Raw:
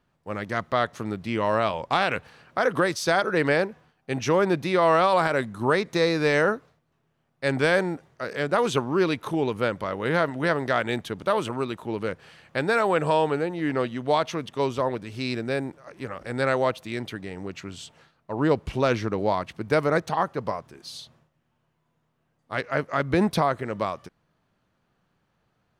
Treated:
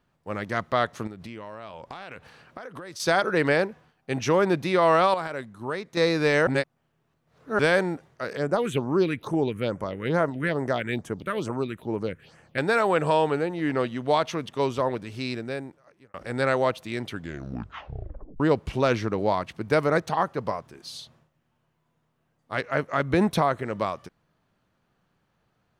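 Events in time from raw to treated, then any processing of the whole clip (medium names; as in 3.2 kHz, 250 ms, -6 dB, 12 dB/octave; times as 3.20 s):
1.07–3.00 s: compression 12:1, threshold -35 dBFS
5.14–5.97 s: gain -9 dB
6.47–7.59 s: reverse
8.37–12.58 s: phase shifter stages 4, 2.3 Hz, lowest notch 760–4000 Hz
15.05–16.14 s: fade out
17.07 s: tape stop 1.33 s
22.63–23.62 s: band-stop 4.8 kHz, Q 8.4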